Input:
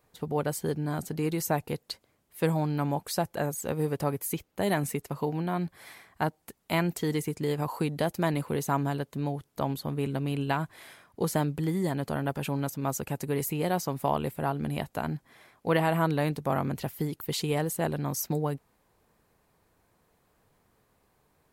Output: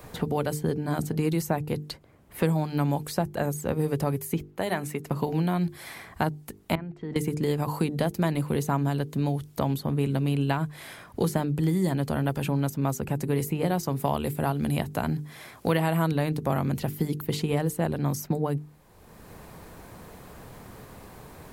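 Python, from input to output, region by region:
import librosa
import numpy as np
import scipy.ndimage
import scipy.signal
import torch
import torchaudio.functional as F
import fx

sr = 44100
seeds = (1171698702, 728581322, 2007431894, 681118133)

y = fx.chain(x, sr, fx.lowpass(hz=1300.0, slope=6),
    fx.tilt_eq(slope=4.0), at=(4.5, 5.07))
y = fx.chain(y, sr, fx.lowpass(hz=2200.0, slope=12),
    fx.level_steps(step_db=21), at=(6.75, 7.16))
y = fx.chain(y, sr, fx.highpass(hz=47.0, slope=12),
    fx.peak_eq(hz=12000.0, db=6.0, octaves=2.7), at=(13.83, 16.12))
y = fx.low_shelf(y, sr, hz=260.0, db=8.0)
y = fx.hum_notches(y, sr, base_hz=50, count=9)
y = fx.band_squash(y, sr, depth_pct=70)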